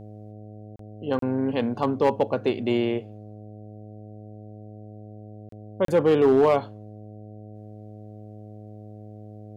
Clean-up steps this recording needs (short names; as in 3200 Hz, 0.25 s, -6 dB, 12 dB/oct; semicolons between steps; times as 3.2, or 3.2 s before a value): clip repair -12.5 dBFS; de-hum 105.9 Hz, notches 7; interpolate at 0.76/1.19/5.49/5.85, 33 ms